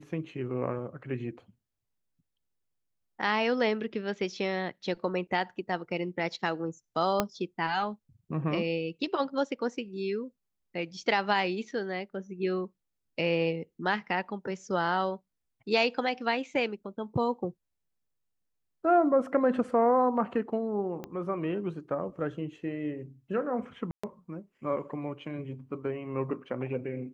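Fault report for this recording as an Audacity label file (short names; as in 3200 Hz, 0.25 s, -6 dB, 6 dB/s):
7.200000	7.200000	pop -10 dBFS
21.040000	21.040000	pop -24 dBFS
23.910000	24.040000	gap 0.125 s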